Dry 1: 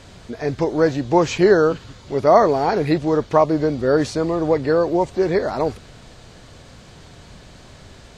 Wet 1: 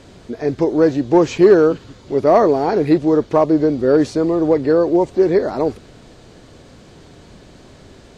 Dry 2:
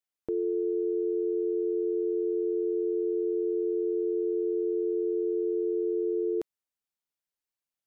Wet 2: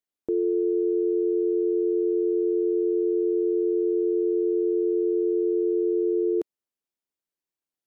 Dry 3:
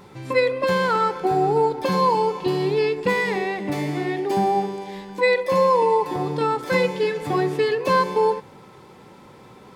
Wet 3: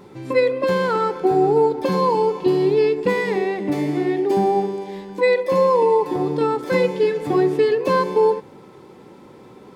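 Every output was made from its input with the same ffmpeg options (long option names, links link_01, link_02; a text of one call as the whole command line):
ffmpeg -i in.wav -filter_complex "[0:a]equalizer=frequency=330:width_type=o:width=1.5:gain=8.5,asplit=2[link_01][link_02];[link_02]volume=3.5dB,asoftclip=hard,volume=-3.5dB,volume=-3.5dB[link_03];[link_01][link_03]amix=inputs=2:normalize=0,volume=-7dB" out.wav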